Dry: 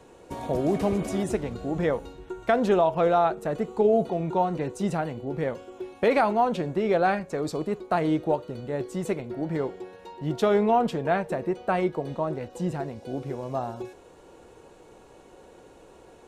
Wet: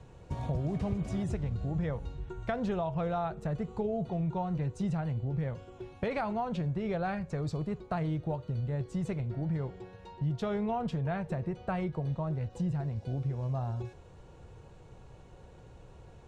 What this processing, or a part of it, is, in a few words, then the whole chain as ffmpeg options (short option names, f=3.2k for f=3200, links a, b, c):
jukebox: -af "lowpass=7k,lowshelf=f=190:t=q:w=1.5:g=13.5,acompressor=threshold=-25dB:ratio=3,volume=-5.5dB"